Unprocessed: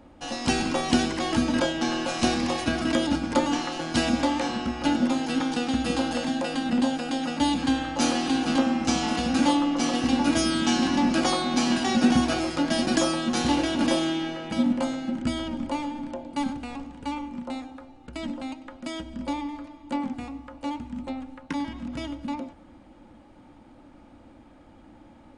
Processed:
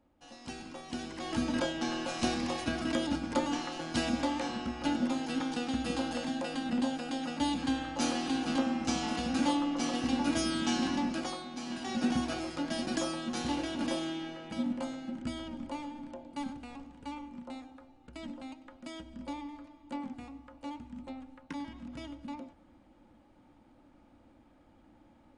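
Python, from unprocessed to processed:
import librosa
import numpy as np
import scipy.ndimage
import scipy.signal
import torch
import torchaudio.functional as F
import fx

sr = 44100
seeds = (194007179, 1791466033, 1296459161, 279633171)

y = fx.gain(x, sr, db=fx.line((0.87, -19.0), (1.43, -7.5), (10.9, -7.5), (11.55, -18.0), (12.03, -10.0)))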